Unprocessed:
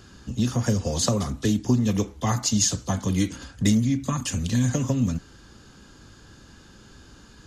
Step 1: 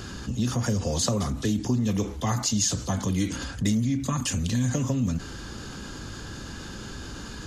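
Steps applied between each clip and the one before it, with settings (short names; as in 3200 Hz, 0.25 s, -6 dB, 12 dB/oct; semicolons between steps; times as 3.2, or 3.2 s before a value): fast leveller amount 50%; gain -5 dB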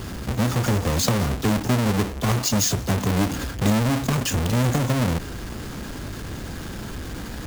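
half-waves squared off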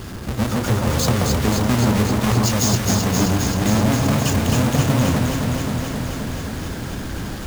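echo with dull and thin repeats by turns 0.132 s, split 1400 Hz, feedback 88%, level -2 dB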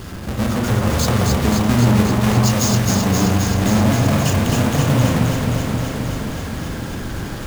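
reverb, pre-delay 42 ms, DRR 3.5 dB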